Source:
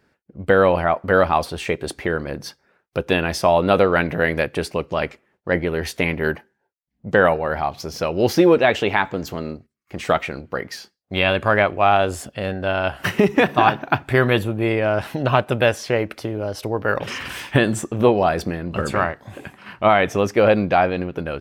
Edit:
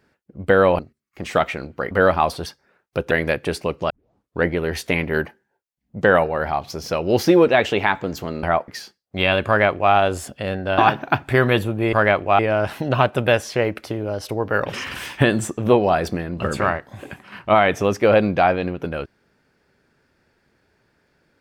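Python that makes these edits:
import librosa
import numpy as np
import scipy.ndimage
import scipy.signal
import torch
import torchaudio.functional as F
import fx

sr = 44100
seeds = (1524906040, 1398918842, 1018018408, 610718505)

y = fx.edit(x, sr, fx.swap(start_s=0.79, length_s=0.25, other_s=9.53, other_length_s=1.12),
    fx.cut(start_s=1.59, length_s=0.87),
    fx.cut(start_s=3.11, length_s=1.1),
    fx.tape_start(start_s=5.0, length_s=0.56),
    fx.duplicate(start_s=11.44, length_s=0.46, to_s=14.73),
    fx.cut(start_s=12.75, length_s=0.83), tone=tone)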